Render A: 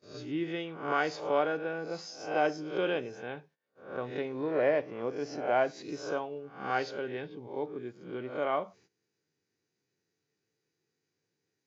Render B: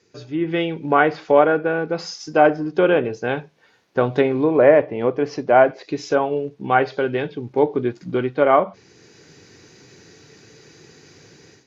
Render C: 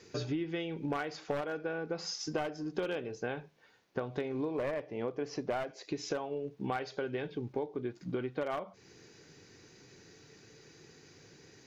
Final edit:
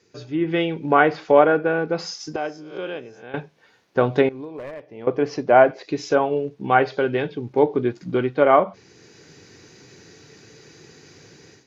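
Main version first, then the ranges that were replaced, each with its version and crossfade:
B
2.36–3.34 s: from A
4.29–5.07 s: from C

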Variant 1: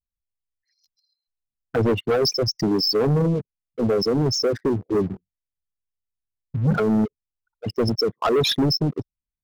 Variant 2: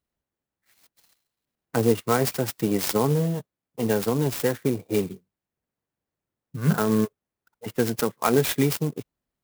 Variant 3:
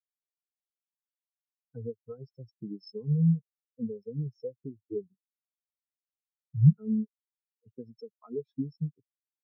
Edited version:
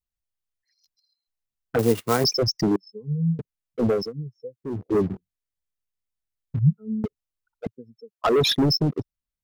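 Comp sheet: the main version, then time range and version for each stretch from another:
1
1.79–2.24 s: from 2
2.76–3.39 s: from 3
4.01–4.75 s: from 3, crossfade 0.24 s
6.59–7.04 s: from 3
7.67–8.24 s: from 3

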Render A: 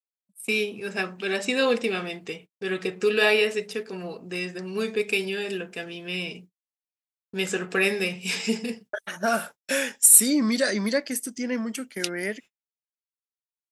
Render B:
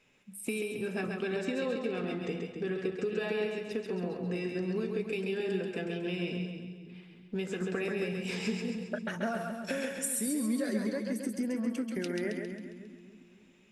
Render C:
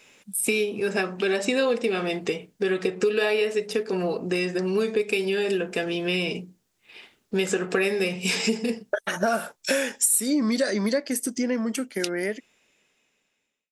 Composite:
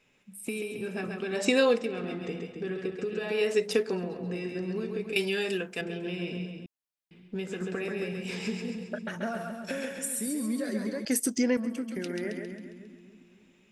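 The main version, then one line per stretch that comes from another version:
B
1.39–1.81 s: from C, crossfade 0.16 s
3.40–3.93 s: from C, crossfade 0.24 s
5.16–5.81 s: from A
6.66–7.11 s: from A
11.05–11.57 s: from C

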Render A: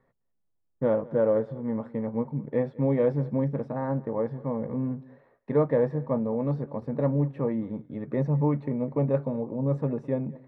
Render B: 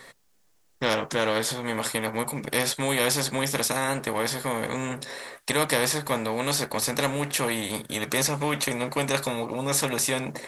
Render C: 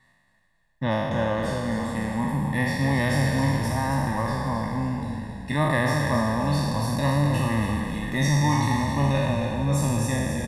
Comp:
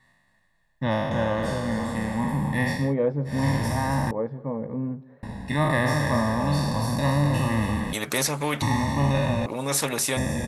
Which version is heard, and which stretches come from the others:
C
2.83–3.36 s: from A, crossfade 0.24 s
4.11–5.23 s: from A
7.93–8.62 s: from B
9.46–10.17 s: from B

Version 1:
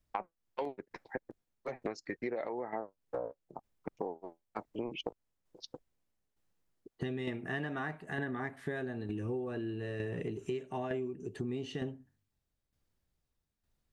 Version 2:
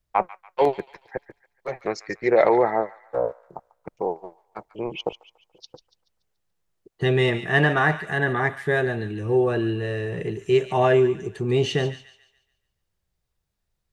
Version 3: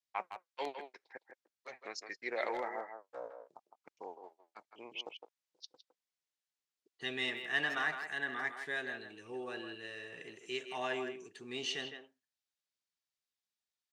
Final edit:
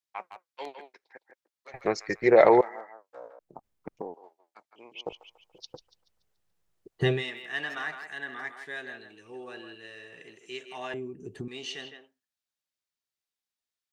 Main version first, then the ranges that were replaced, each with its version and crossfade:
3
1.74–2.61 s: from 2
3.39–4.14 s: from 1
5.12–7.12 s: from 2, crossfade 0.24 s
10.94–11.48 s: from 1

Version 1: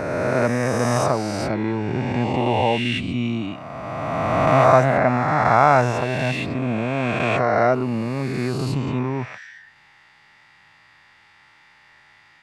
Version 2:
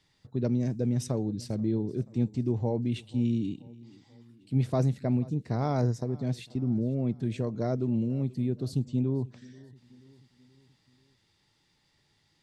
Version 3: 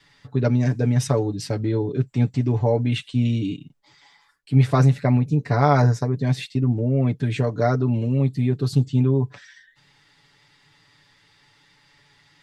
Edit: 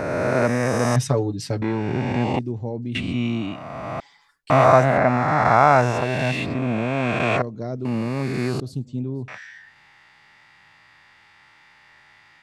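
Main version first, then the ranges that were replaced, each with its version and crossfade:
1
0.96–1.62 s: from 3
2.39–2.95 s: from 2
4.00–4.50 s: from 3
7.42–7.85 s: from 2
8.60–9.28 s: from 2

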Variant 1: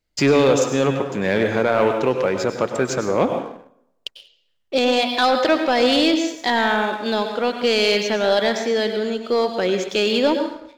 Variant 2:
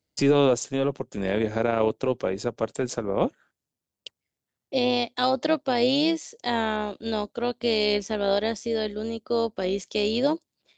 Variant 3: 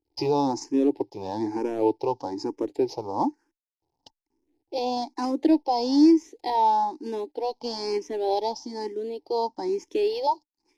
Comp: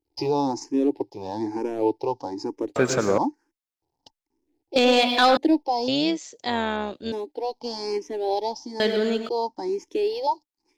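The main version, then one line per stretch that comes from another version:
3
2.76–3.18 s: from 1
4.76–5.37 s: from 1
5.88–7.12 s: from 2
8.80–9.29 s: from 1

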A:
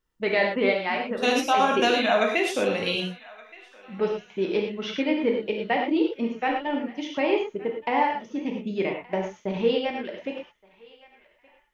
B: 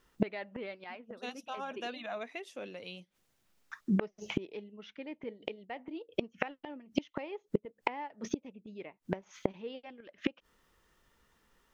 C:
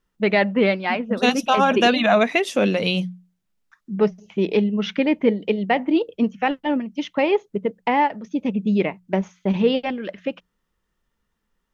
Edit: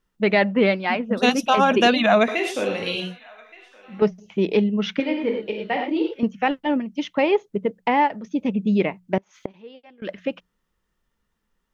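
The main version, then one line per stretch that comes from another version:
C
2.28–4.02 s: from A
5.00–6.23 s: from A
9.18–10.02 s: from B

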